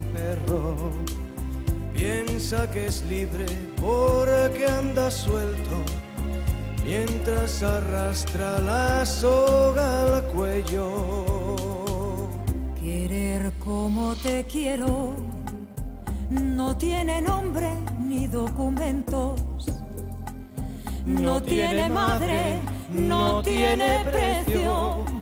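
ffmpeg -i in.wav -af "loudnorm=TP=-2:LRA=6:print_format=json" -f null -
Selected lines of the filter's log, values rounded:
"input_i" : "-25.4",
"input_tp" : "-10.3",
"input_lra" : "4.9",
"input_thresh" : "-35.6",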